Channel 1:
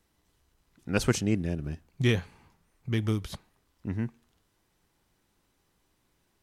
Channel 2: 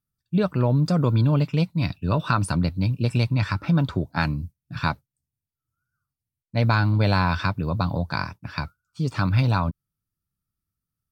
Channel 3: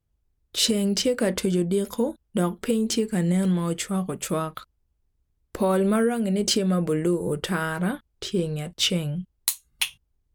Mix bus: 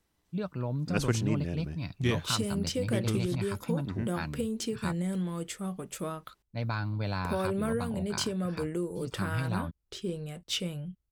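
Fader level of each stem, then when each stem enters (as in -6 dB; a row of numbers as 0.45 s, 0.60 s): -4.0 dB, -12.5 dB, -9.5 dB; 0.00 s, 0.00 s, 1.70 s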